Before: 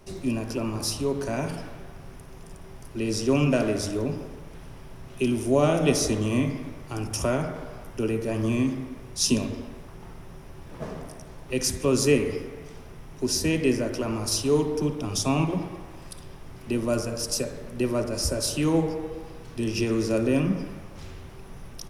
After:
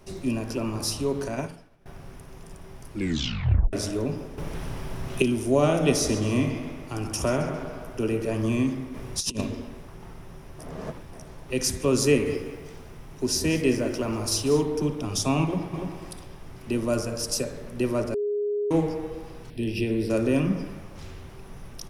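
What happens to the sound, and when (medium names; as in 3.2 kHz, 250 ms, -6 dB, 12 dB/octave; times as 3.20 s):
1.28–1.86 s: upward expansion 2.5:1, over -40 dBFS
2.91 s: tape stop 0.82 s
4.38–5.22 s: gain +9.5 dB
5.92–8.35 s: tape echo 132 ms, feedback 61%, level -8 dB, low-pass 5 kHz
8.94–9.41 s: compressor with a negative ratio -28 dBFS, ratio -0.5
10.59–11.13 s: reverse
12.07–14.63 s: bit-crushed delay 191 ms, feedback 35%, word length 8-bit, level -14.5 dB
15.44–15.97 s: echo throw 290 ms, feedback 15%, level -5 dB
18.14–18.71 s: bleep 413 Hz -23.5 dBFS
19.50–20.10 s: static phaser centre 2.9 kHz, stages 4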